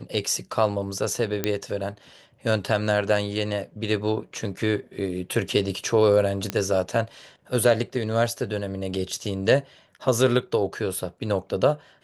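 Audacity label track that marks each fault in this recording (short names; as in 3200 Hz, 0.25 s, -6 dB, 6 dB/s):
1.440000	1.440000	pop -8 dBFS
6.500000	6.500000	pop -10 dBFS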